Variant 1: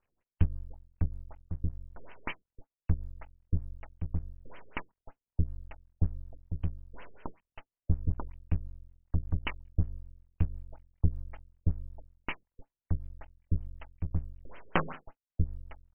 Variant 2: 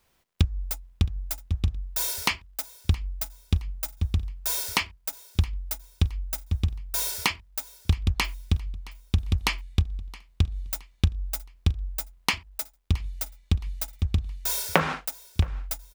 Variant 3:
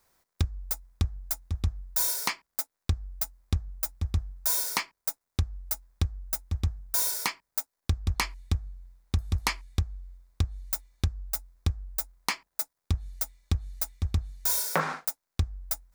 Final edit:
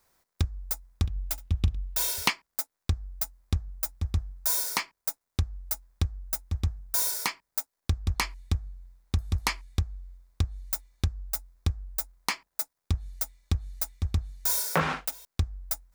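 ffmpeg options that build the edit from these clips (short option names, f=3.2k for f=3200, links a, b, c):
-filter_complex "[1:a]asplit=2[a][b];[2:a]asplit=3[c][d][e];[c]atrim=end=1.062[f];[a]atrim=start=1.058:end=2.302[g];[d]atrim=start=2.298:end=14.772[h];[b]atrim=start=14.768:end=15.252[i];[e]atrim=start=15.248[j];[f][g]acrossfade=d=0.004:c1=hsin:c2=hsin[k];[k][h]acrossfade=d=0.004:c1=hsin:c2=hsin[l];[l][i]acrossfade=d=0.004:c1=hsin:c2=hsin[m];[m][j]acrossfade=d=0.004:c1=hsin:c2=hsin"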